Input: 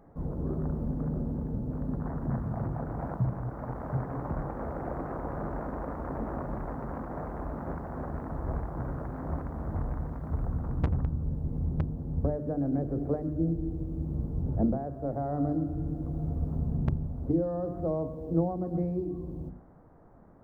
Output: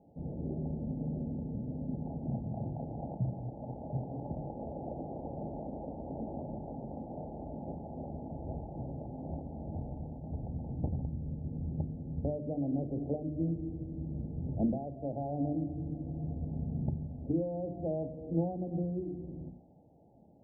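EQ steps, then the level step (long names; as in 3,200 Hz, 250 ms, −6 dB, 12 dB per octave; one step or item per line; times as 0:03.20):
high-pass filter 71 Hz
Chebyshev low-pass with heavy ripple 860 Hz, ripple 3 dB
−3.0 dB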